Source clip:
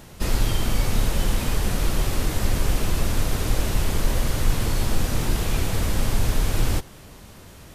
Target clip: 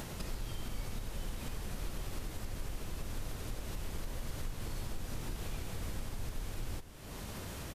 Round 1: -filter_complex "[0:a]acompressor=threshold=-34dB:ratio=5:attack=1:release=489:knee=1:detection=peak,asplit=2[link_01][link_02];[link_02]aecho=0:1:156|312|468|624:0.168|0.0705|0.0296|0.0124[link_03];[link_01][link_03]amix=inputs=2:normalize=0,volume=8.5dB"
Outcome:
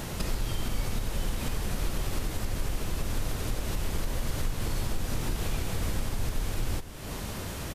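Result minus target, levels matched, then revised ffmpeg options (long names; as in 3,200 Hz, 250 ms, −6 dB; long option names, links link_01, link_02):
downward compressor: peak gain reduction −9.5 dB
-filter_complex "[0:a]acompressor=threshold=-46dB:ratio=5:attack=1:release=489:knee=1:detection=peak,asplit=2[link_01][link_02];[link_02]aecho=0:1:156|312|468|624:0.168|0.0705|0.0296|0.0124[link_03];[link_01][link_03]amix=inputs=2:normalize=0,volume=8.5dB"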